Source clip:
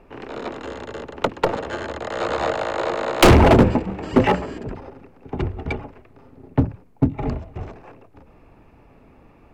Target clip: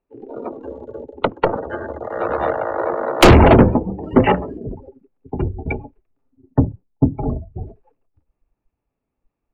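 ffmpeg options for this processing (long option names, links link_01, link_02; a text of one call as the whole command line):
ffmpeg -i in.wav -af "afftdn=noise_reduction=33:noise_floor=-28,volume=3dB" out.wav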